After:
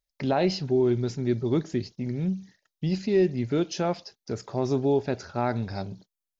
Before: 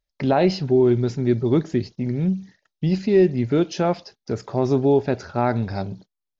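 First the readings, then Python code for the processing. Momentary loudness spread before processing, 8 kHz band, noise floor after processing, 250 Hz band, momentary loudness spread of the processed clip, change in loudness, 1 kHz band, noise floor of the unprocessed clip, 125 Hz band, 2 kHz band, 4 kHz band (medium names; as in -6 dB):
12 LU, no reading, under -85 dBFS, -6.0 dB, 12 LU, -6.0 dB, -5.5 dB, -83 dBFS, -6.0 dB, -5.0 dB, -2.0 dB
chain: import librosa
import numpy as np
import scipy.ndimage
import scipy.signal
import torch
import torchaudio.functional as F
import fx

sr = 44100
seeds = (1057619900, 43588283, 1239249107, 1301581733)

y = fx.high_shelf(x, sr, hz=4800.0, db=9.5)
y = F.gain(torch.from_numpy(y), -6.0).numpy()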